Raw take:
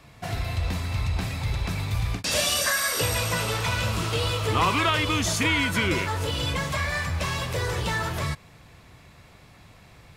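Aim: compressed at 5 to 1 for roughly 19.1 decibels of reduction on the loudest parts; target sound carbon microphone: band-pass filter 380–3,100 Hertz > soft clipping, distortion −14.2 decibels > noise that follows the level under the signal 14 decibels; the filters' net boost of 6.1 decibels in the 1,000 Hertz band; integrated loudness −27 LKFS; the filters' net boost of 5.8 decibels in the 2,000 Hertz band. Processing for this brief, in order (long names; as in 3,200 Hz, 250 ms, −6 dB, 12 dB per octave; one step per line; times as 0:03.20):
parametric band 1,000 Hz +5.5 dB
parametric band 2,000 Hz +6.5 dB
downward compressor 5 to 1, threshold −36 dBFS
band-pass filter 380–3,100 Hz
soft clipping −35 dBFS
noise that follows the level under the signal 14 dB
level +14 dB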